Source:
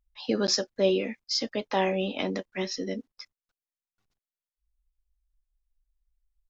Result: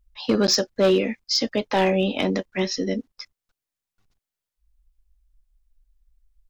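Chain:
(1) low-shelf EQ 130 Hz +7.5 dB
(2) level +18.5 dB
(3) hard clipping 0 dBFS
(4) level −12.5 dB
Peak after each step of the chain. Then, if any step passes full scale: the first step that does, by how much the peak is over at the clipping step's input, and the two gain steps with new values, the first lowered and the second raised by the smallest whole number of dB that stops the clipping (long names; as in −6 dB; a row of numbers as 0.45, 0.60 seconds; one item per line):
−11.0, +7.5, 0.0, −12.5 dBFS
step 2, 7.5 dB
step 2 +10.5 dB, step 4 −4.5 dB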